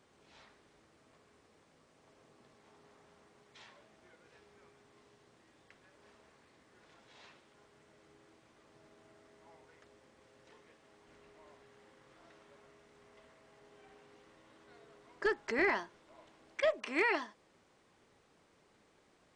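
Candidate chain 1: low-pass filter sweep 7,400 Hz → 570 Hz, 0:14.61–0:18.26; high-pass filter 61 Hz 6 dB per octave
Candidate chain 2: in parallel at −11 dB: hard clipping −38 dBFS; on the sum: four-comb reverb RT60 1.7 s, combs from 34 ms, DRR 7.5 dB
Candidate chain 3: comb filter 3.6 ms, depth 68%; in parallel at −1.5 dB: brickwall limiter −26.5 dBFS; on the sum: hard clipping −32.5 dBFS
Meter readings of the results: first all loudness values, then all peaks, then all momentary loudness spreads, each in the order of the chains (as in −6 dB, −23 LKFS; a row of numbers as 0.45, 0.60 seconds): −33.0, −33.5, −42.0 LKFS; −16.5, −18.0, −32.5 dBFS; 14, 18, 24 LU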